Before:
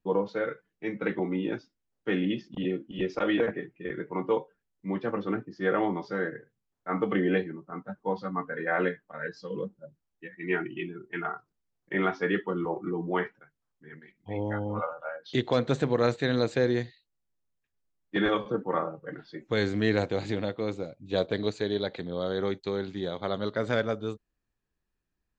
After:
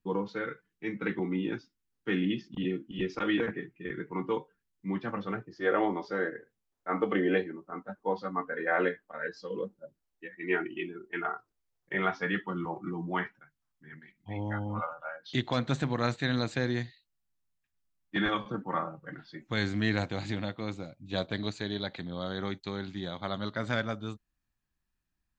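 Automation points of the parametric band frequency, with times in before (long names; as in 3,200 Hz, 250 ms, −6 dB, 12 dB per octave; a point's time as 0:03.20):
parametric band −12 dB 0.74 octaves
0:04.89 600 Hz
0:05.83 140 Hz
0:11.30 140 Hz
0:12.45 450 Hz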